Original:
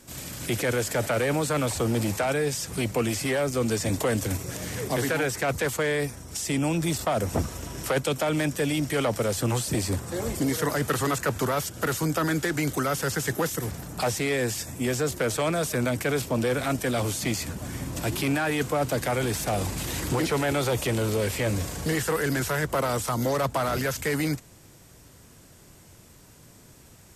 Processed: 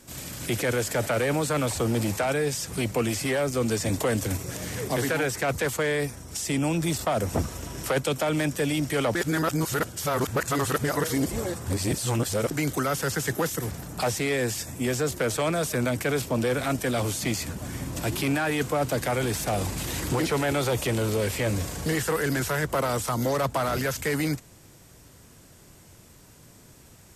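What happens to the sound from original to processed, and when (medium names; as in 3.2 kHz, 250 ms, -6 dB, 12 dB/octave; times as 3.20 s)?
9.15–12.51 s: reverse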